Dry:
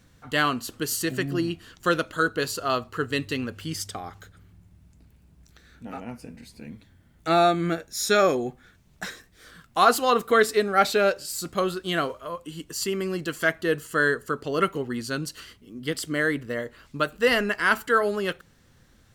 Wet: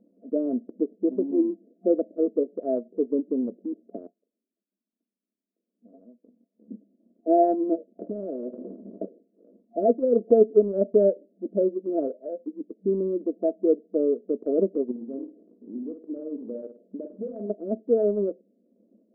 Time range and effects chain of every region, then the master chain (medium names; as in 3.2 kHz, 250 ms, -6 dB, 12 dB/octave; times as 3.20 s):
4.07–6.71 s: pre-emphasis filter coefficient 0.9 + delay 497 ms -22.5 dB + three bands expanded up and down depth 40%
7.99–9.06 s: de-esser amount 25% + spectrum-flattening compressor 10:1
14.91–17.50 s: compression, threshold -33 dBFS + flutter echo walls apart 8.9 m, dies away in 0.51 s
whole clip: FFT band-pass 190–690 Hz; peaking EQ 280 Hz +4.5 dB 1.7 oct; transient shaper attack +2 dB, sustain -4 dB